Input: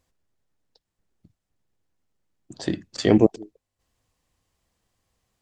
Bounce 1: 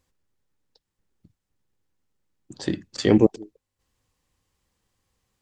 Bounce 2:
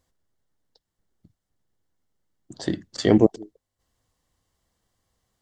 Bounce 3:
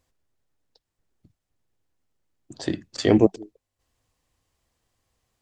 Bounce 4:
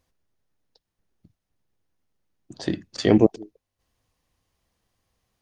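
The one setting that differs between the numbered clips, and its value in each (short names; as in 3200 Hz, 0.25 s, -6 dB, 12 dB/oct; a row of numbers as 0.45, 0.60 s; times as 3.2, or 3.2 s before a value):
notch, frequency: 670, 2500, 190, 7600 Hz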